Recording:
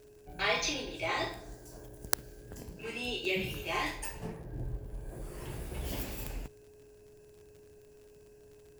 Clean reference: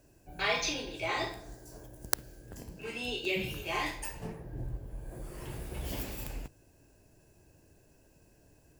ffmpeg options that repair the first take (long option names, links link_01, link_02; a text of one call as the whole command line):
ffmpeg -i in.wav -af "adeclick=threshold=4,bandreject=frequency=420:width=30" out.wav